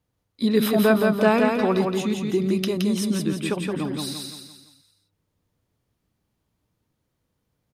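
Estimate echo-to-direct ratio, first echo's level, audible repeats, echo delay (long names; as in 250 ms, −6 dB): −2.5 dB, −3.5 dB, 5, 170 ms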